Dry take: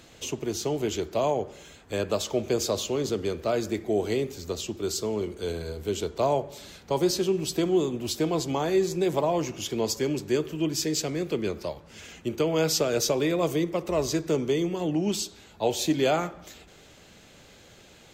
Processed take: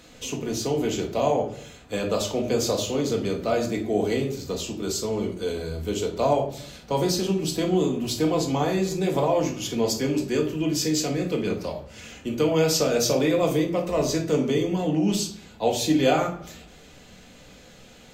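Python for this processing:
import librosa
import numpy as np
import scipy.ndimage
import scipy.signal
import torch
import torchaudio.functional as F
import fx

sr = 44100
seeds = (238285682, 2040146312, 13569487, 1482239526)

y = fx.room_shoebox(x, sr, seeds[0], volume_m3=420.0, walls='furnished', distance_m=1.9)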